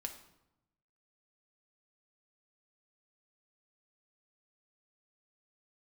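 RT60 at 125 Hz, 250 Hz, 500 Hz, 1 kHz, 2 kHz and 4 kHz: 1.3, 1.1, 0.90, 0.90, 0.70, 0.60 seconds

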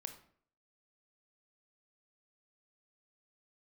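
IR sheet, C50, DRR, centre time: 10.0 dB, 6.5 dB, 11 ms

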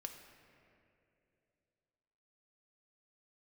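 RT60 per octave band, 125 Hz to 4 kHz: 3.2, 3.0, 3.2, 2.3, 2.4, 1.6 seconds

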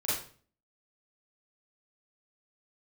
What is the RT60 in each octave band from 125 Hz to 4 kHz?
0.60, 0.55, 0.45, 0.40, 0.40, 0.40 seconds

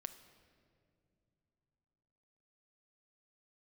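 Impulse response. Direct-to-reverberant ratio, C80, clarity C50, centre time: 9.0 dB, 13.0 dB, 11.5 dB, 13 ms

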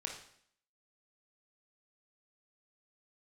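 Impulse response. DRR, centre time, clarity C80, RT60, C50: 0.0 dB, 28 ms, 9.5 dB, 0.65 s, 5.5 dB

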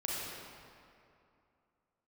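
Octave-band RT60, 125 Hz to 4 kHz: 2.6, 2.7, 2.6, 2.6, 2.2, 1.6 seconds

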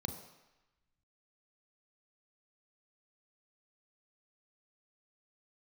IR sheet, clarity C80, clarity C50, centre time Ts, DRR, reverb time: 10.5 dB, 8.5 dB, 23 ms, 6.0 dB, 1.0 s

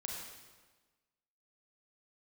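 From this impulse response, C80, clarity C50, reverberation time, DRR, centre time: 2.5 dB, 0.5 dB, 1.3 s, −1.5 dB, 74 ms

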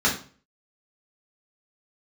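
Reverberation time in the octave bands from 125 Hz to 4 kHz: 0.50, 0.45, 0.40, 0.40, 0.35, 0.35 seconds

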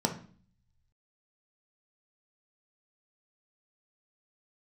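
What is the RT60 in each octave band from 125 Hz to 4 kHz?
1.3, 0.75, 0.45, 0.45, 0.40, 0.45 seconds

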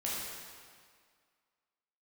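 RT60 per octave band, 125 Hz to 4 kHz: 1.7, 1.9, 1.9, 2.0, 1.8, 1.7 seconds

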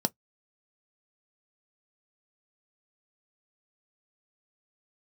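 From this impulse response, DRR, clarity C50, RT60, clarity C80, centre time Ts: 9.5 dB, 38.0 dB, non-exponential decay, 59.5 dB, 3 ms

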